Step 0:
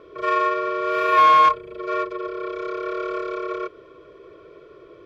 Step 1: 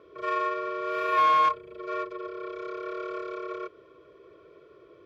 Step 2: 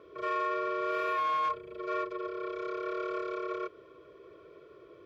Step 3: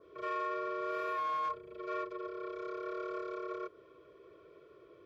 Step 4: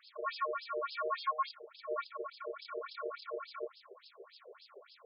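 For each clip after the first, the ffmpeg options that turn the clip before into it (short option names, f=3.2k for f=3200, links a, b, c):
-af "highpass=52,volume=-7.5dB"
-af "alimiter=limit=-24dB:level=0:latency=1:release=15"
-af "adynamicequalizer=threshold=0.00224:dfrequency=2700:dqfactor=1.5:tfrequency=2700:tqfactor=1.5:attack=5:release=100:ratio=0.375:range=2.5:mode=cutabove:tftype=bell,volume=-4.5dB"
-af "aeval=exprs='val(0)+0.5*0.00158*sgn(val(0))':c=same,aexciter=amount=8.4:drive=7.4:freq=4.3k,afftfilt=real='re*between(b*sr/1024,530*pow(3800/530,0.5+0.5*sin(2*PI*3.5*pts/sr))/1.41,530*pow(3800/530,0.5+0.5*sin(2*PI*3.5*pts/sr))*1.41)':imag='im*between(b*sr/1024,530*pow(3800/530,0.5+0.5*sin(2*PI*3.5*pts/sr))/1.41,530*pow(3800/530,0.5+0.5*sin(2*PI*3.5*pts/sr))*1.41)':win_size=1024:overlap=0.75,volume=5.5dB"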